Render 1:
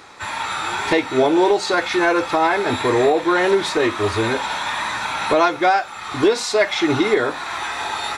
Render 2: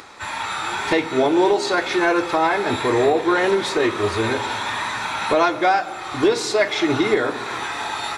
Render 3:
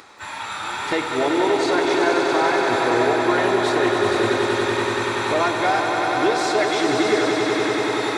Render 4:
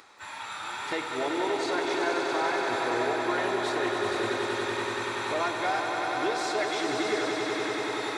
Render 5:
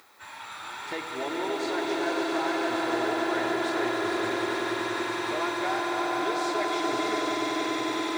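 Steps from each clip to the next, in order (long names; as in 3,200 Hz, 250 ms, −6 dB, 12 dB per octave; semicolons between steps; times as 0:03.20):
upward compression, threshold −37 dBFS; on a send at −13.5 dB: convolution reverb RT60 2.1 s, pre-delay 3 ms; on the sum: level −1.5 dB
low-shelf EQ 69 Hz −7.5 dB; echo that builds up and dies away 95 ms, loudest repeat 5, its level −7 dB; level −4 dB
low-shelf EQ 410 Hz −5 dB; level −7.5 dB
background noise violet −62 dBFS; echo that builds up and dies away 144 ms, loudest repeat 5, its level −9 dB; level −3 dB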